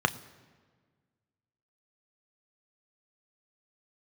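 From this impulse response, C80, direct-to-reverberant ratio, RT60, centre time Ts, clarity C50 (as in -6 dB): 19.0 dB, 9.5 dB, 1.6 s, 5 ms, 18.5 dB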